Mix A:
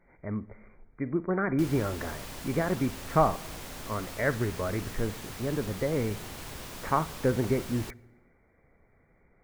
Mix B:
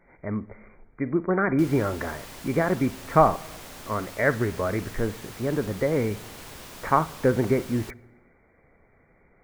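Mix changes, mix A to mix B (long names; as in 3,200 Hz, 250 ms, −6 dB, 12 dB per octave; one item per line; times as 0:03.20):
speech +6.0 dB
master: add low-shelf EQ 190 Hz −4.5 dB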